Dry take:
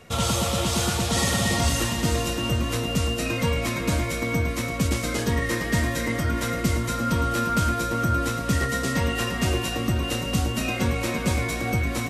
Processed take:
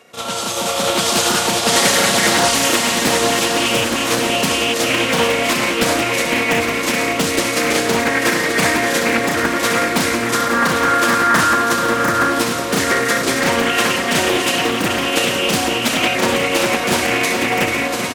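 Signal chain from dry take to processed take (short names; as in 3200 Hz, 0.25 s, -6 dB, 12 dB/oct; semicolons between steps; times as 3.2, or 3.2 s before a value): HPF 310 Hz 12 dB/oct; AGC gain up to 9 dB; granular stretch 1.5×, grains 0.197 s; feedback echo 1.121 s, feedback 47%, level -7.5 dB; Doppler distortion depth 0.54 ms; gain +3.5 dB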